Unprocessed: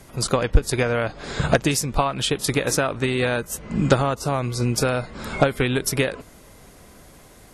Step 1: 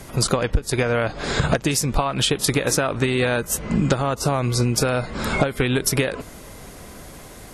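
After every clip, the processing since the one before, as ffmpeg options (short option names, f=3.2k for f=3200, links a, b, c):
-af "acompressor=threshold=-24dB:ratio=6,volume=7.5dB"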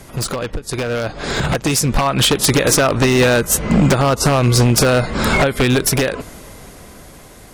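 -af "aeval=exprs='0.178*(abs(mod(val(0)/0.178+3,4)-2)-1)':c=same,dynaudnorm=f=200:g=17:m=9dB"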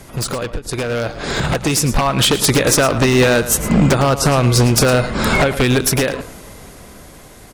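-af "aecho=1:1:110:0.224"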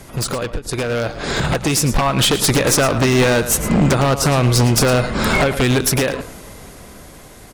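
-af "aeval=exprs='clip(val(0),-1,0.211)':c=same"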